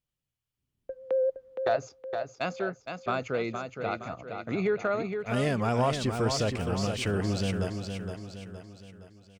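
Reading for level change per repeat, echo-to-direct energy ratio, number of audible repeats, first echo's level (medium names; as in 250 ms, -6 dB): -6.5 dB, -5.5 dB, 5, -6.5 dB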